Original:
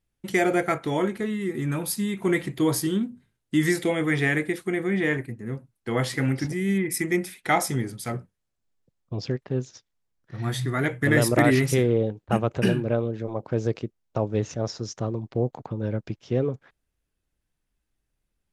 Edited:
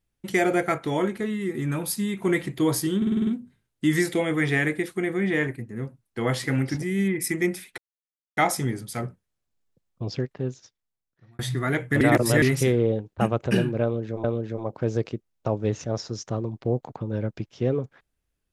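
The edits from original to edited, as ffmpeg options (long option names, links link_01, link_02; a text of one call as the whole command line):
ffmpeg -i in.wav -filter_complex "[0:a]asplit=12[link_01][link_02][link_03][link_04][link_05][link_06][link_07][link_08][link_09][link_10][link_11][link_12];[link_01]atrim=end=3.022[link_13];[link_02]atrim=start=2.968:end=3.022[link_14];[link_03]atrim=start=2.968:end=3.022[link_15];[link_04]atrim=start=2.968:end=3.022[link_16];[link_05]atrim=start=2.968:end=3.022[link_17];[link_06]atrim=start=2.968:end=3.022[link_18];[link_07]atrim=start=2.968:end=7.48,asetpts=PTS-STARTPTS,afade=type=out:start_time=4.508:duration=0.004:curve=hsin,apad=pad_dur=0.59[link_19];[link_08]atrim=start=7.48:end=10.5,asetpts=PTS-STARTPTS,afade=type=in:duration=0.004:curve=hsin,afade=type=out:start_time=1.82:duration=1.2[link_20];[link_09]atrim=start=10.5:end=11.122,asetpts=PTS-STARTPTS,afade=type=in:duration=0.004:curve=hsin[link_21];[link_10]atrim=start=11.118:end=11.532,asetpts=PTS-STARTPTS,areverse[link_22];[link_11]atrim=start=11.528:end=13.352[link_23];[link_12]atrim=start=12.938[link_24];[link_13][link_14]acrossfade=duration=0.004:curve1=hsin:curve2=hsin[link_25];[link_25][link_15]acrossfade=duration=0.004:curve1=hsin:curve2=hsin[link_26];[link_26][link_16]acrossfade=duration=0.004:curve1=hsin:curve2=hsin[link_27];[link_27][link_17]acrossfade=duration=0.004:curve1=hsin:curve2=hsin[link_28];[link_28][link_18]acrossfade=duration=0.004:curve1=hsin:curve2=hsin[link_29];[link_19][link_20][link_21]concat=n=3:v=0:a=1[link_30];[link_29][link_30]acrossfade=duration=0.004:curve1=hsin:curve2=hsin[link_31];[link_31][link_22]acrossfade=duration=0.004:curve1=hsin:curve2=hsin[link_32];[link_32][link_23]acrossfade=duration=0.004:curve1=hsin:curve2=hsin[link_33];[link_33][link_24]acrossfade=duration=0.004:curve1=hsin:curve2=hsin" out.wav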